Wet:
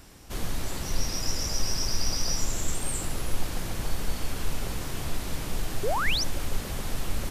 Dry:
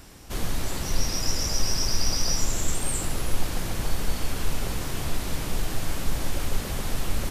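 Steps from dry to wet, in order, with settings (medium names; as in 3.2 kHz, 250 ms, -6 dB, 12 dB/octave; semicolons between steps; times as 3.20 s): painted sound rise, 5.83–6.24 s, 370–6400 Hz -25 dBFS; trim -3 dB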